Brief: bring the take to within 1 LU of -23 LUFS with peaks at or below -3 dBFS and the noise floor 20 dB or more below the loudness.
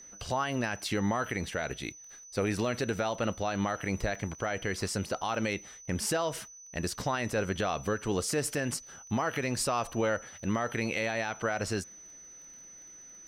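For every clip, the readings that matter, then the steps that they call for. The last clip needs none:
tick rate 21 per s; steady tone 6 kHz; tone level -48 dBFS; loudness -32.5 LUFS; peak level -19.5 dBFS; loudness target -23.0 LUFS
-> de-click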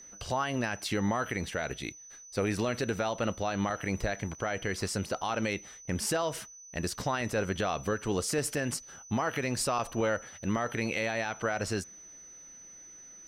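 tick rate 0 per s; steady tone 6 kHz; tone level -48 dBFS
-> band-stop 6 kHz, Q 30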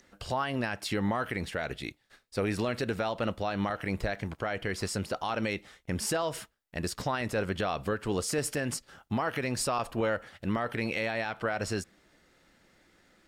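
steady tone not found; loudness -32.5 LUFS; peak level -18.0 dBFS; loudness target -23.0 LUFS
-> trim +9.5 dB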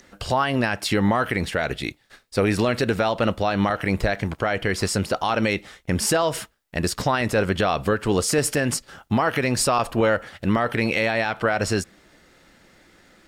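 loudness -23.0 LUFS; peak level -8.5 dBFS; noise floor -59 dBFS

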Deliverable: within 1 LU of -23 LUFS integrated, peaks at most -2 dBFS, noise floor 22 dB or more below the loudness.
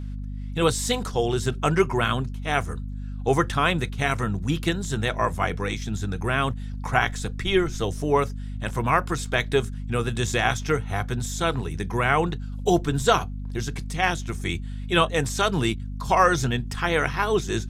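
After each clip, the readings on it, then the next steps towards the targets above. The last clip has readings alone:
hum 50 Hz; highest harmonic 250 Hz; hum level -30 dBFS; loudness -24.5 LUFS; peak level -4.5 dBFS; loudness target -23.0 LUFS
-> de-hum 50 Hz, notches 5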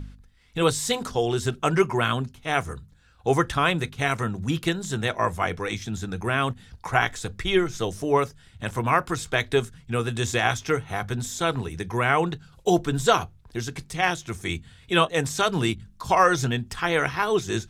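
hum not found; loudness -25.0 LUFS; peak level -5.0 dBFS; loudness target -23.0 LUFS
-> trim +2 dB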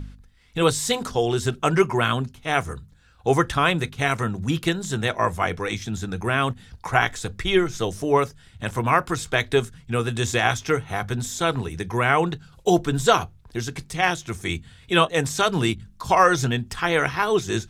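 loudness -23.0 LUFS; peak level -3.0 dBFS; noise floor -52 dBFS

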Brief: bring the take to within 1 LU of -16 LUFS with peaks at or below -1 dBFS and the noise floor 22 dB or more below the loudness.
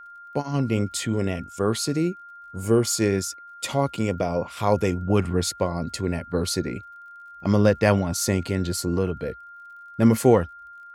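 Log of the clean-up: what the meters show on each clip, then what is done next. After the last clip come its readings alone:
tick rate 32 per s; steady tone 1.4 kHz; tone level -41 dBFS; loudness -24.0 LUFS; peak level -4.0 dBFS; loudness target -16.0 LUFS
-> de-click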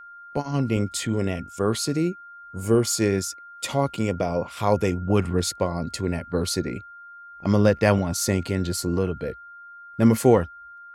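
tick rate 0.091 per s; steady tone 1.4 kHz; tone level -41 dBFS
-> band-stop 1.4 kHz, Q 30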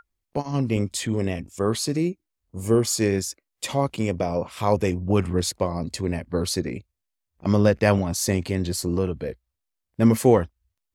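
steady tone not found; loudness -24.0 LUFS; peak level -4.5 dBFS; loudness target -16.0 LUFS
-> trim +8 dB; peak limiter -1 dBFS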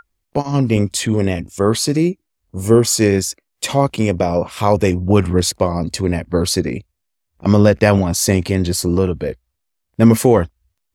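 loudness -16.5 LUFS; peak level -1.0 dBFS; noise floor -74 dBFS

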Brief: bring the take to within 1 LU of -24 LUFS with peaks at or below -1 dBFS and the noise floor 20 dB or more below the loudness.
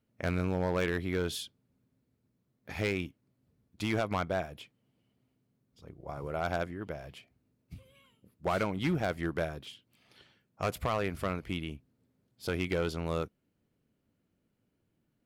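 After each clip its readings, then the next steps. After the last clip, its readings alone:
clipped samples 0.9%; clipping level -23.5 dBFS; loudness -34.0 LUFS; peak level -23.5 dBFS; loudness target -24.0 LUFS
-> clip repair -23.5 dBFS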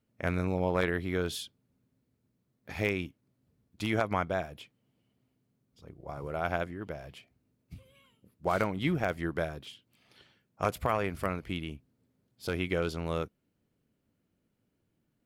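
clipped samples 0.0%; loudness -33.0 LUFS; peak level -14.5 dBFS; loudness target -24.0 LUFS
-> trim +9 dB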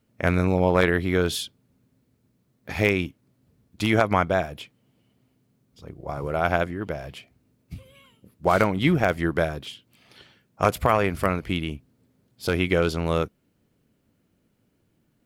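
loudness -24.0 LUFS; peak level -5.5 dBFS; noise floor -69 dBFS

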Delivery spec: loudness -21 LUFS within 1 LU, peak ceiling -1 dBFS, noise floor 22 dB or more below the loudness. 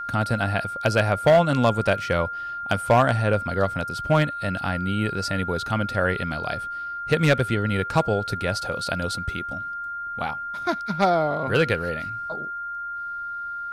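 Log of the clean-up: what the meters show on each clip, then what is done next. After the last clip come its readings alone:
clipped samples 0.3%; clipping level -10.5 dBFS; steady tone 1.4 kHz; tone level -29 dBFS; loudness -24.0 LUFS; peak level -10.5 dBFS; loudness target -21.0 LUFS
-> clip repair -10.5 dBFS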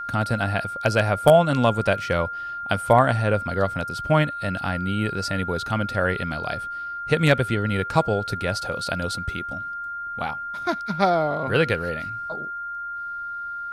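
clipped samples 0.0%; steady tone 1.4 kHz; tone level -29 dBFS
-> band-stop 1.4 kHz, Q 30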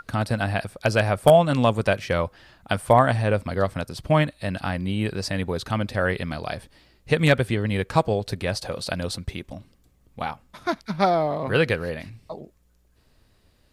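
steady tone not found; loudness -23.5 LUFS; peak level -2.0 dBFS; loudness target -21.0 LUFS
-> trim +2.5 dB; peak limiter -1 dBFS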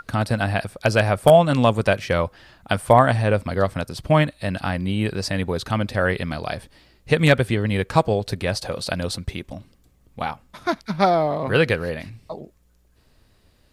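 loudness -21.0 LUFS; peak level -1.0 dBFS; noise floor -59 dBFS

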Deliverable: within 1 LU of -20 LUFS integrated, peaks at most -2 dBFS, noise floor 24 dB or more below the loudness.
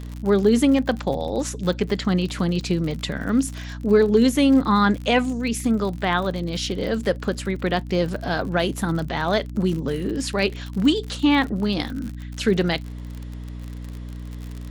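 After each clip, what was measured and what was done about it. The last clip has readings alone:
tick rate 52 per s; hum 60 Hz; highest harmonic 300 Hz; hum level -31 dBFS; loudness -22.0 LUFS; peak level -6.5 dBFS; loudness target -20.0 LUFS
-> de-click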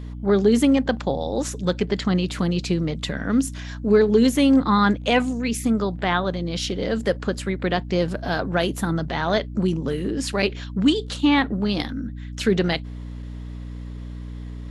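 tick rate 0 per s; hum 60 Hz; highest harmonic 300 Hz; hum level -31 dBFS
-> de-hum 60 Hz, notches 5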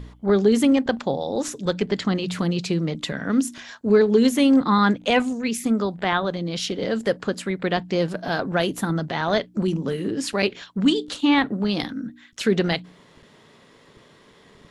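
hum not found; loudness -22.5 LUFS; peak level -6.5 dBFS; loudness target -20.0 LUFS
-> trim +2.5 dB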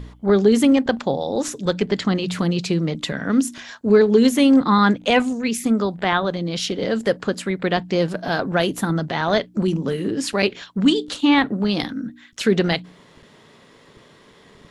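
loudness -20.0 LUFS; peak level -4.0 dBFS; noise floor -51 dBFS

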